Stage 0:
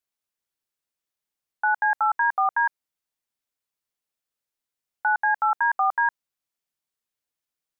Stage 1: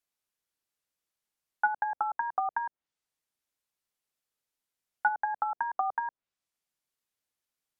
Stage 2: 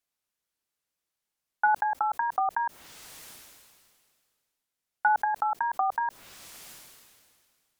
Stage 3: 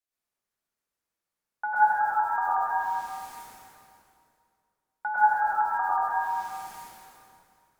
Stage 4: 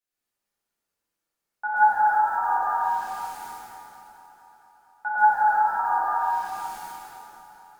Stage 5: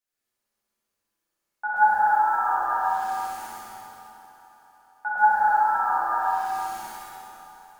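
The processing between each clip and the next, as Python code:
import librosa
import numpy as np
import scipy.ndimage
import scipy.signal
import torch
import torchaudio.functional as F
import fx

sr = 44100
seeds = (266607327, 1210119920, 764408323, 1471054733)

y1 = fx.env_lowpass_down(x, sr, base_hz=540.0, full_db=-19.0)
y2 = fx.sustainer(y1, sr, db_per_s=29.0)
y2 = y2 * librosa.db_to_amplitude(1.5)
y3 = fx.rev_plate(y2, sr, seeds[0], rt60_s=2.1, hf_ratio=0.25, predelay_ms=85, drr_db=-9.0)
y3 = y3 * librosa.db_to_amplitude(-8.5)
y4 = fx.echo_heads(y3, sr, ms=227, heads='all three', feedback_pct=53, wet_db=-24)
y4 = fx.rev_double_slope(y4, sr, seeds[1], early_s=0.87, late_s=3.0, knee_db=-18, drr_db=-5.0)
y4 = y4 * librosa.db_to_amplitude(-3.0)
y5 = fx.room_flutter(y4, sr, wall_m=11.2, rt60_s=0.95)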